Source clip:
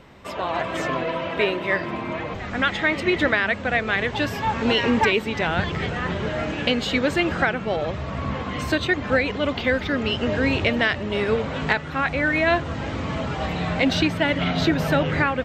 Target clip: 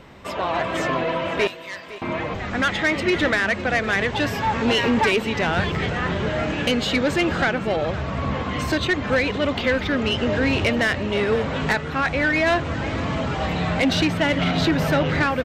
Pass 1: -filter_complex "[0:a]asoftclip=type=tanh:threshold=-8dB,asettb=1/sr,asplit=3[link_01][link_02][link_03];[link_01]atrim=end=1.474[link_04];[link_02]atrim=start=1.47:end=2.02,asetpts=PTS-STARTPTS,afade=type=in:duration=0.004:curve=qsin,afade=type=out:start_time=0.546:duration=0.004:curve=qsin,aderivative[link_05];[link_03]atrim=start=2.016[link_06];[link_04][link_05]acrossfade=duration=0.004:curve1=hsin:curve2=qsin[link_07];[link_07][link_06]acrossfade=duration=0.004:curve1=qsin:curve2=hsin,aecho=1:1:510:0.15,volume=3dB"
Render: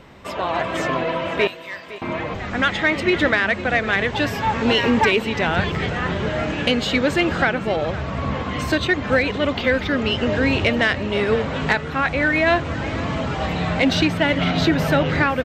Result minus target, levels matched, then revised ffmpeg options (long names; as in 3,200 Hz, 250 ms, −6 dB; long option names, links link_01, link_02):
soft clipping: distortion −11 dB
-filter_complex "[0:a]asoftclip=type=tanh:threshold=-16dB,asettb=1/sr,asplit=3[link_01][link_02][link_03];[link_01]atrim=end=1.474[link_04];[link_02]atrim=start=1.47:end=2.02,asetpts=PTS-STARTPTS,afade=type=in:duration=0.004:curve=qsin,afade=type=out:start_time=0.546:duration=0.004:curve=qsin,aderivative[link_05];[link_03]atrim=start=2.016[link_06];[link_04][link_05]acrossfade=duration=0.004:curve1=hsin:curve2=qsin[link_07];[link_07][link_06]acrossfade=duration=0.004:curve1=qsin:curve2=hsin,aecho=1:1:510:0.15,volume=3dB"